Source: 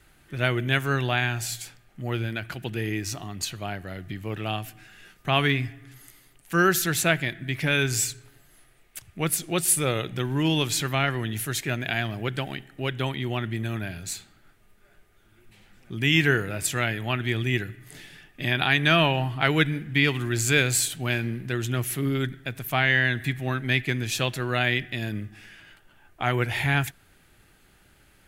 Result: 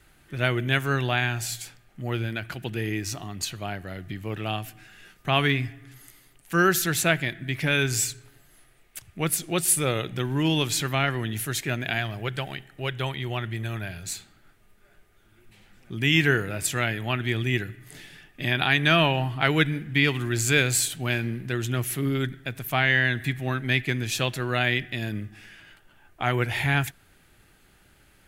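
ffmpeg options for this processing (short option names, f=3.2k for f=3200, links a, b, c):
-filter_complex "[0:a]asettb=1/sr,asplit=3[a][b][c];[a]atrim=end=11.984[d];[b]atrim=start=11.98:end=14.05,asetpts=PTS-STARTPTS,afade=t=in:d=0.004:c=qsin,afade=t=out:st=2.066:d=0.004:c=qsin,equalizer=f=260:t=o:w=0.77:g=-7.5[e];[c]atrim=start=14.046[f];[d][e]acrossfade=d=0.004:c1=hsin:c2=qsin[g];[g][f]acrossfade=d=0.004:c1=qsin:c2=hsin"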